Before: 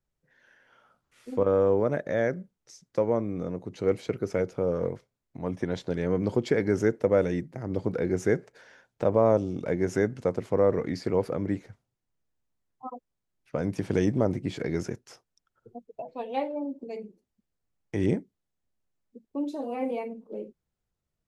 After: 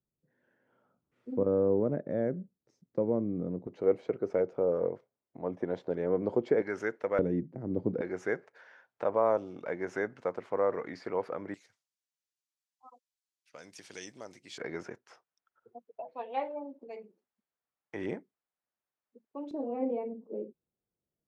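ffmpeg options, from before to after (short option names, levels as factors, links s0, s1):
-af "asetnsamples=n=441:p=0,asendcmd='3.67 bandpass f 580;6.62 bandpass f 1500;7.19 bandpass f 270;8.01 bandpass f 1200;11.54 bandpass f 5800;14.58 bandpass f 1200;19.51 bandpass f 350',bandpass=f=240:t=q:w=0.89:csg=0"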